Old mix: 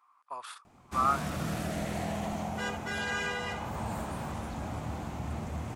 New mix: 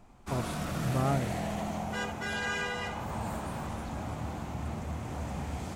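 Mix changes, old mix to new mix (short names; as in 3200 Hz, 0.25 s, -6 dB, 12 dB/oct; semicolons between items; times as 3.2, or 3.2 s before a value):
speech: remove resonant high-pass 1200 Hz, resonance Q 4.9; background: entry -0.65 s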